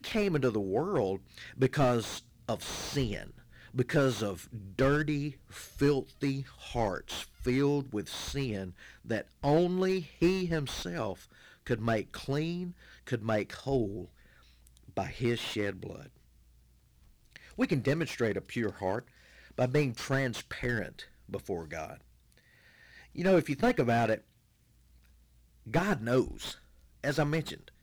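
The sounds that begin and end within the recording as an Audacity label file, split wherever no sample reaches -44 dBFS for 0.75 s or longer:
17.360000	24.180000	sound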